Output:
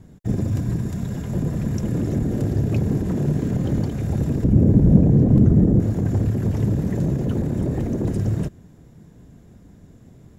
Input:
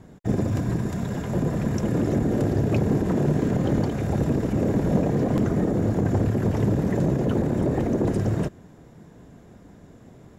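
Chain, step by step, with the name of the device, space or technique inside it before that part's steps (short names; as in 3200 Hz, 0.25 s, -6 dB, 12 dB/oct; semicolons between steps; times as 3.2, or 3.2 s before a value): smiley-face EQ (low shelf 200 Hz +6.5 dB; bell 860 Hz -5.5 dB 2.7 oct; high shelf 9700 Hz +5.5 dB); 4.44–5.8 tilt shelf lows +9 dB, about 730 Hz; gain -1.5 dB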